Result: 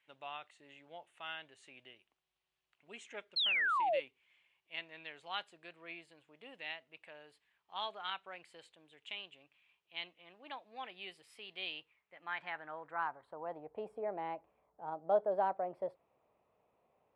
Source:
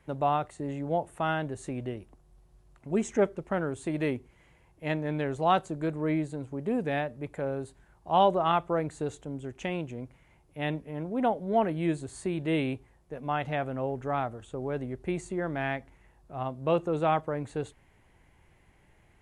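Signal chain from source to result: gliding tape speed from 99% -> 125%; band-pass sweep 2.9 kHz -> 640 Hz, 11.73–13.94 s; painted sound fall, 3.36–4.00 s, 500–4400 Hz -30 dBFS; trim -2 dB

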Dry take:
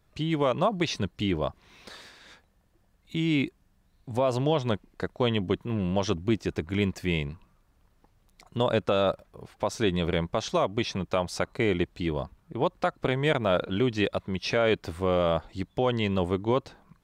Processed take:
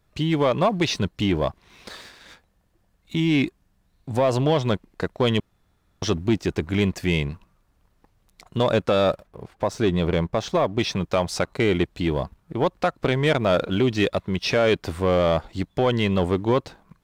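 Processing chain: 5.40–6.02 s: room tone; 9.27–10.79 s: treble shelf 2.2 kHz -7 dB; waveshaping leveller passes 1; trim +2.5 dB

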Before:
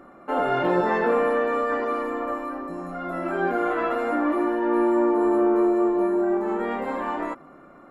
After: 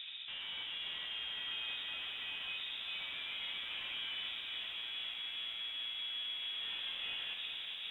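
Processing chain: wind noise 200 Hz -38 dBFS; reverse; compression, threshold -26 dBFS, peak gain reduction 9 dB; reverse; peak limiter -30 dBFS, peak gain reduction 12 dB; valve stage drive 43 dB, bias 0.45; on a send at -6 dB: reverberation RT60 0.75 s, pre-delay 55 ms; on the sum: frequency inversion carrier 3.7 kHz; bit-crushed delay 406 ms, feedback 80%, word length 12-bit, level -7 dB

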